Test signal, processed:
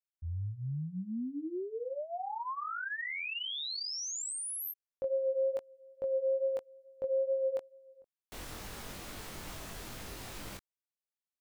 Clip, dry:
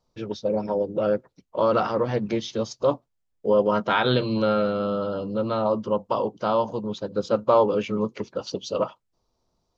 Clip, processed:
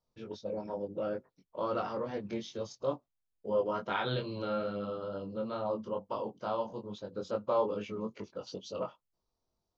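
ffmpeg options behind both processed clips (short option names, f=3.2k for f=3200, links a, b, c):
-af "flanger=delay=20:depth=2.5:speed=2.3,volume=-8.5dB"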